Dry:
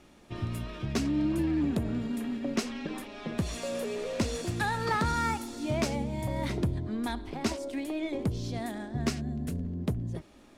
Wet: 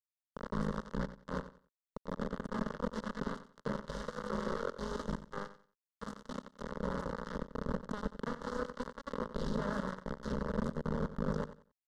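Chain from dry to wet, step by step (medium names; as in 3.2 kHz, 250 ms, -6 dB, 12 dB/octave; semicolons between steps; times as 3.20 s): rattle on loud lows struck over -28 dBFS, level -37 dBFS; peaking EQ 140 Hz -7.5 dB 0.31 oct; hum notches 60/120/180/240/300/360/420/480/540/600 Hz; compressor with a negative ratio -36 dBFS, ratio -1; bit crusher 5-bit; static phaser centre 550 Hz, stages 8; tape speed -11%; tape spacing loss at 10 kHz 31 dB; feedback delay 91 ms, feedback 25%, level -13.5 dB; trim +3.5 dB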